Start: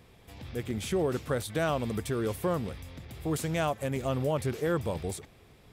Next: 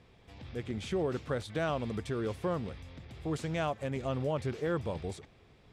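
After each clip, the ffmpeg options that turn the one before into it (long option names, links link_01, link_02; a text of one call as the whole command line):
ffmpeg -i in.wav -af "lowpass=5600,volume=-3.5dB" out.wav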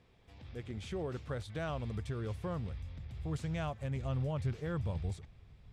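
ffmpeg -i in.wav -af "asubboost=boost=6.5:cutoff=130,volume=-6dB" out.wav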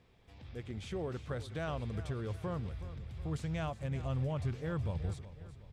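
ffmpeg -i in.wav -af "aecho=1:1:369|738|1107|1476:0.188|0.0904|0.0434|0.0208" out.wav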